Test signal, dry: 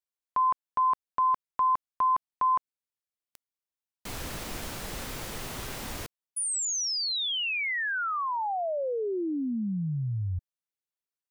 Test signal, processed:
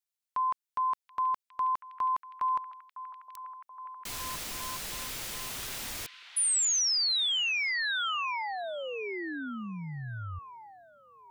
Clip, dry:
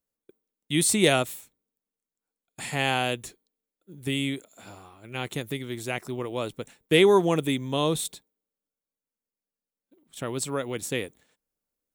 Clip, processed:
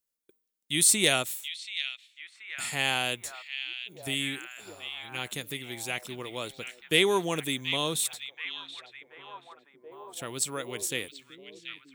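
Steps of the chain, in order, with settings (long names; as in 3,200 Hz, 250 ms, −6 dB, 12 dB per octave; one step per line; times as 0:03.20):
tilt shelving filter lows −6 dB, about 1,500 Hz
echo through a band-pass that steps 730 ms, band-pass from 2,900 Hz, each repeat −0.7 octaves, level −6.5 dB
level −2.5 dB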